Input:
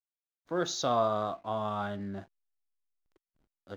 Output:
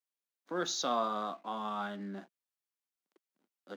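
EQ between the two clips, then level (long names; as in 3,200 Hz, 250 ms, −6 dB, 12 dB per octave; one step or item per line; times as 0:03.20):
Butterworth high-pass 190 Hz 36 dB per octave
notch filter 650 Hz, Q 12
dynamic equaliser 470 Hz, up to −5 dB, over −43 dBFS, Q 0.72
0.0 dB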